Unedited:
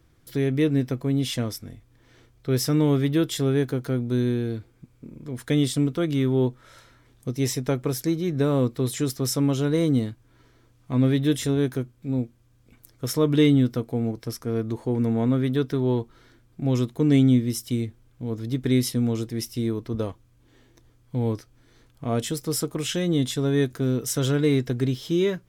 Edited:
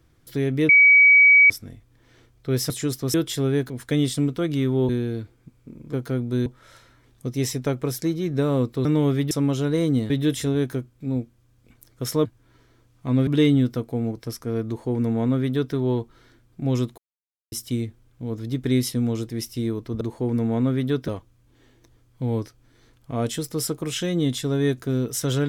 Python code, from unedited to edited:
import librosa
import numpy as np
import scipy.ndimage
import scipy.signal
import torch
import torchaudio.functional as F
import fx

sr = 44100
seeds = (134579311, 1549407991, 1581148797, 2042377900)

y = fx.edit(x, sr, fx.bleep(start_s=0.69, length_s=0.81, hz=2270.0, db=-9.5),
    fx.swap(start_s=2.7, length_s=0.46, other_s=8.87, other_length_s=0.44),
    fx.swap(start_s=3.72, length_s=0.53, other_s=5.29, other_length_s=1.19),
    fx.move(start_s=10.1, length_s=1.02, to_s=13.27),
    fx.duplicate(start_s=14.67, length_s=1.07, to_s=20.01),
    fx.silence(start_s=16.98, length_s=0.54), tone=tone)